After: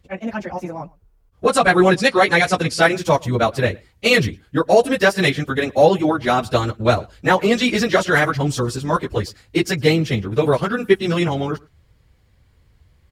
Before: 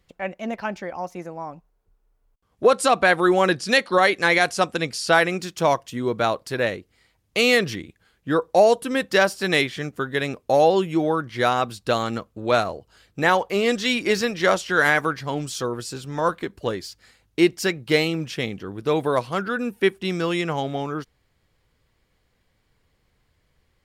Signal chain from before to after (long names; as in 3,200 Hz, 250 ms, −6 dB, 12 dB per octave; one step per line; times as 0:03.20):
parametric band 71 Hz +13.5 dB 1.9 octaves
time stretch by phase vocoder 0.55×
slap from a distant wall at 19 metres, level −26 dB
automatic gain control gain up to 5 dB
level +2.5 dB